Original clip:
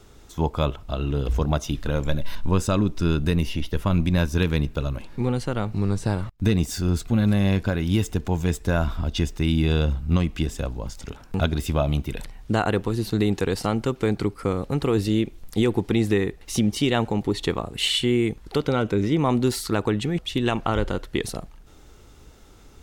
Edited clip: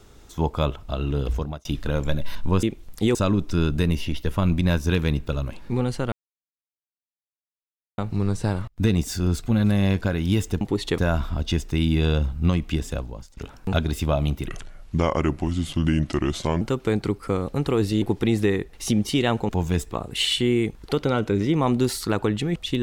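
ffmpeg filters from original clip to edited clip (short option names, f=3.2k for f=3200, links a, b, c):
-filter_complex "[0:a]asplit=13[a][b][c][d][e][f][g][h][i][j][k][l][m];[a]atrim=end=1.65,asetpts=PTS-STARTPTS,afade=t=out:st=1.25:d=0.4[n];[b]atrim=start=1.65:end=2.632,asetpts=PTS-STARTPTS,afade=t=in:d=0.004:c=hsin[o];[c]atrim=start=15.178:end=15.702[p];[d]atrim=start=2.628:end=5.6,asetpts=PTS-STARTPTS,afade=t=out:st=2.968:d=0.004:c=hsin,apad=pad_dur=1.86[q];[e]atrim=start=5.6:end=8.232,asetpts=PTS-STARTPTS,afade=t=in:d=0.004:c=hsin[r];[f]atrim=start=17.168:end=17.542[s];[g]atrim=start=8.648:end=11.04,asetpts=PTS-STARTPTS,afade=t=out:st=1.962:d=0.43:silence=0.0891251[t];[h]atrim=start=11.04:end=12.154,asetpts=PTS-STARTPTS,afade=t=in:d=0.004:c=hsin:silence=0.0891251[u];[i]atrim=start=12.15:end=13.77,asetpts=PTS-STARTPTS,asetrate=33516,aresample=44100[v];[j]atrim=start=13.766:end=15.182[w];[k]atrim=start=15.698:end=17.172[x];[l]atrim=start=8.228:end=8.652[y];[m]atrim=start=17.538[z];[n][o]concat=n=2:v=0:a=1[aa];[aa][p]acrossfade=d=0.004:c1=hsin:c2=hsin[ab];[q][r]concat=n=2:v=0:a=1[ac];[ab][ac]acrossfade=d=0.004:c1=hsin:c2=hsin[ad];[ad][s]acrossfade=d=0.004:c1=hsin:c2=hsin[ae];[t][u]concat=n=2:v=0:a=1[af];[ae][af]acrossfade=d=0.004:c1=hsin:c2=hsin[ag];[ag][v]acrossfade=d=0.004:c1=hsin:c2=hsin[ah];[ah][w]acrossfade=d=0.004:c1=hsin:c2=hsin[ai];[ai][x]acrossfade=d=0.004:c1=hsin:c2=hsin[aj];[aj][y]acrossfade=d=0.004:c1=hsin:c2=hsin[ak];[ak][z]acrossfade=d=0.004:c1=hsin:c2=hsin"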